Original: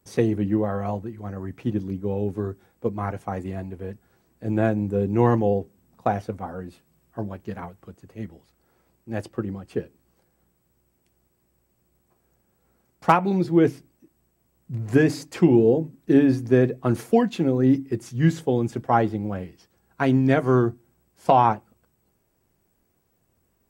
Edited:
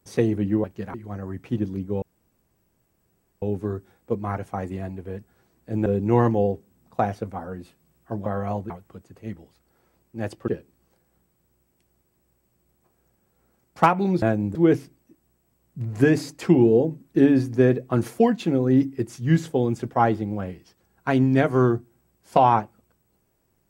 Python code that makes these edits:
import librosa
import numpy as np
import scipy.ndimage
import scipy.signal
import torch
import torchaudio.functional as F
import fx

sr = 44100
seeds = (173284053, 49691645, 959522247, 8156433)

y = fx.edit(x, sr, fx.swap(start_s=0.64, length_s=0.44, other_s=7.33, other_length_s=0.3),
    fx.insert_room_tone(at_s=2.16, length_s=1.4),
    fx.move(start_s=4.6, length_s=0.33, to_s=13.48),
    fx.cut(start_s=9.41, length_s=0.33), tone=tone)